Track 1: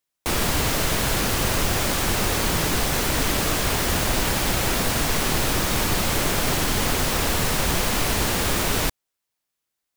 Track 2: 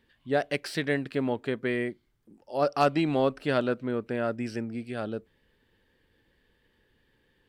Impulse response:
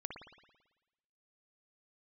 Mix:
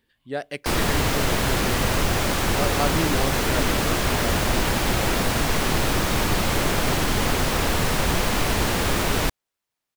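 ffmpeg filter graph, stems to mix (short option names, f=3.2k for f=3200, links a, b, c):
-filter_complex "[0:a]highshelf=f=4.5k:g=-6.5,adelay=400,volume=1.5dB[a];[1:a]highshelf=f=5.5k:g=9.5,volume=-3.5dB[b];[a][b]amix=inputs=2:normalize=0"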